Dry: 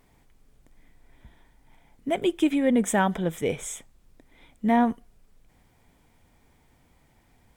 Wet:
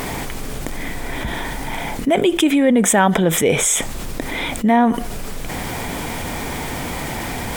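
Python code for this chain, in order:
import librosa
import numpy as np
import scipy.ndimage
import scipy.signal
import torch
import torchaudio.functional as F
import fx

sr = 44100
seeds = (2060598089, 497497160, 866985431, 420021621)

y = fx.low_shelf(x, sr, hz=130.0, db=-9.5)
y = fx.env_flatten(y, sr, amount_pct=70)
y = y * librosa.db_to_amplitude(6.5)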